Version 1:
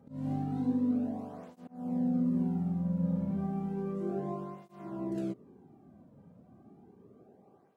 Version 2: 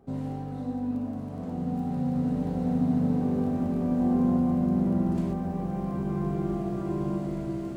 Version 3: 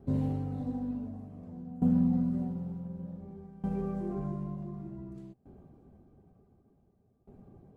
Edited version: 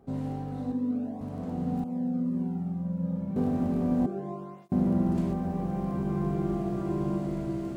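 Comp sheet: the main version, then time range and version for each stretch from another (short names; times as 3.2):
2
0.72–1.21 from 1
1.84–3.36 from 1
4.06–4.72 from 1
not used: 3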